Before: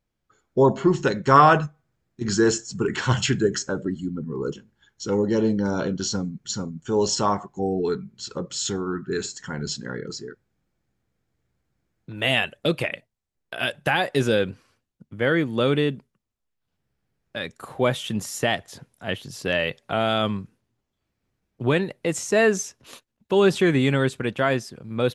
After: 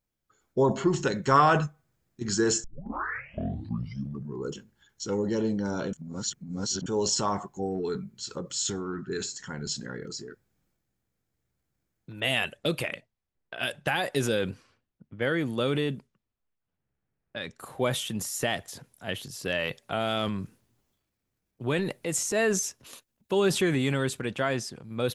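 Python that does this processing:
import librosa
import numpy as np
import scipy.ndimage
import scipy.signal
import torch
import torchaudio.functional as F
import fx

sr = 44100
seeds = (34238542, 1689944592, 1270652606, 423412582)

y = fx.lowpass(x, sr, hz=7600.0, slope=24, at=(8.84, 9.49))
y = fx.env_lowpass(y, sr, base_hz=2300.0, full_db=-21.0, at=(12.2, 17.59))
y = fx.transient(y, sr, attack_db=-3, sustain_db=5, at=(20.17, 22.53))
y = fx.lowpass(y, sr, hz=9100.0, slope=12, at=(24.26, 24.84))
y = fx.edit(y, sr, fx.tape_start(start_s=2.64, length_s=1.8),
    fx.reverse_span(start_s=5.93, length_s=0.93), tone=tone)
y = fx.high_shelf(y, sr, hz=7200.0, db=11.0)
y = fx.transient(y, sr, attack_db=2, sustain_db=6)
y = y * librosa.db_to_amplitude(-7.0)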